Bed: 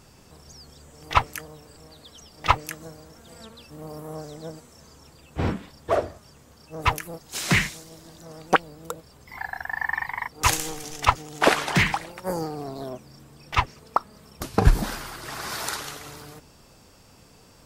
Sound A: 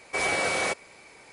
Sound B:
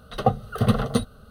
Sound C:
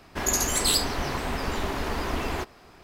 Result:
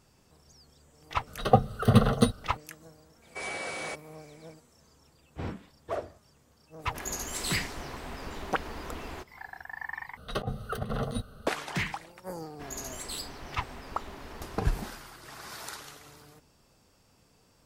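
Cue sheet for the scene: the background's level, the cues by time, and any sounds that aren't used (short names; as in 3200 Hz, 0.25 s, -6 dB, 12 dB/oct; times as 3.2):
bed -11 dB
1.27 add B
3.22 add A -10 dB
6.79 add C -11 dB
10.17 replace with B -5.5 dB + negative-ratio compressor -27 dBFS
12.44 add C -15 dB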